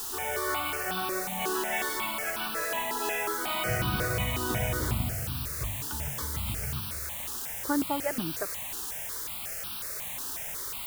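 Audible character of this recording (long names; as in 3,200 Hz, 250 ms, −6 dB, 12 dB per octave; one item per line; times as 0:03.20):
a quantiser's noise floor 6 bits, dither triangular
notches that jump at a steady rate 5.5 Hz 590–2,000 Hz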